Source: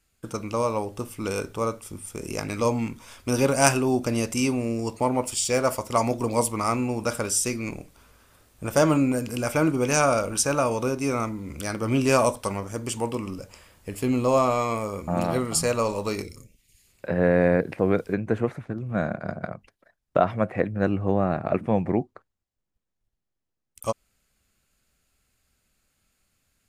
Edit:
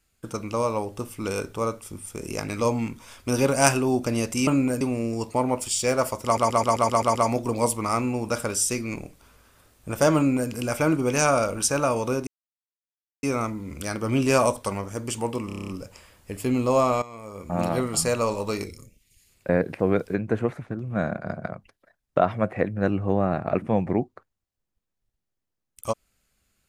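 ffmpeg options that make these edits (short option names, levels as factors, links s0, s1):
-filter_complex "[0:a]asplit=20[s0][s1][s2][s3][s4][s5][s6][s7][s8][s9][s10][s11][s12][s13][s14][s15][s16][s17][s18][s19];[s0]atrim=end=4.472[s20];[s1]atrim=start=8.908:end=9.252[s21];[s2]atrim=start=4.468:end=6.032[s22];[s3]atrim=start=5.898:end=6.032[s23];[s4]atrim=start=5.898:end=6.032[s24];[s5]atrim=start=5.898:end=6.032[s25];[s6]atrim=start=5.898:end=6.032[s26];[s7]atrim=start=5.898:end=6.032[s27];[s8]atrim=start=5.898:end=6.032[s28];[s9]atrim=start=5.898:end=11.02,asetpts=PTS-STARTPTS,afade=t=out:st=5.118:d=0.004:c=hsin,apad=pad_dur=0.96[s29];[s10]atrim=start=11.02:end=13.292,asetpts=PTS-STARTPTS,afade=t=in:d=0.004:c=hsin[s30];[s11]atrim=start=13.258:end=13.292[s31];[s12]atrim=start=13.258:end=13.292[s32];[s13]atrim=start=13.258:end=13.292[s33];[s14]atrim=start=13.258:end=13.292[s34];[s15]atrim=start=13.258:end=13.292[s35];[s16]atrim=start=13.258:end=13.292[s36];[s17]atrim=start=13.258:end=14.6,asetpts=PTS-STARTPTS,afade=t=out:st=1.338:d=0.004:c=hsin:silence=0.149624[s37];[s18]atrim=start=14.6:end=17.072,asetpts=PTS-STARTPTS,afade=t=in:d=0.55:c=qua:silence=0.149624[s38];[s19]atrim=start=17.478[s39];[s20][s21]acrossfade=d=0.004:c1=hsin:c2=hsin[s40];[s40][s22]acrossfade=d=0.004:c1=hsin:c2=hsin[s41];[s41][s23]acrossfade=d=0.004:c1=hsin:c2=hsin[s42];[s42][s24]acrossfade=d=0.004:c1=hsin:c2=hsin[s43];[s43][s25]acrossfade=d=0.004:c1=hsin:c2=hsin[s44];[s44][s26]acrossfade=d=0.004:c1=hsin:c2=hsin[s45];[s45][s27]acrossfade=d=0.004:c1=hsin:c2=hsin[s46];[s46][s28]acrossfade=d=0.004:c1=hsin:c2=hsin[s47];[s29][s30]concat=n=2:v=0:a=1[s48];[s47][s48]acrossfade=d=0.004:c1=hsin:c2=hsin[s49];[s49][s31]acrossfade=d=0.004:c1=hsin:c2=hsin[s50];[s50][s32]acrossfade=d=0.004:c1=hsin:c2=hsin[s51];[s51][s33]acrossfade=d=0.004:c1=hsin:c2=hsin[s52];[s52][s34]acrossfade=d=0.004:c1=hsin:c2=hsin[s53];[s53][s35]acrossfade=d=0.004:c1=hsin:c2=hsin[s54];[s54][s36]acrossfade=d=0.004:c1=hsin:c2=hsin[s55];[s37][s38]concat=n=2:v=0:a=1[s56];[s55][s56]acrossfade=d=0.004:c1=hsin:c2=hsin[s57];[s57][s39]acrossfade=d=0.004:c1=hsin:c2=hsin"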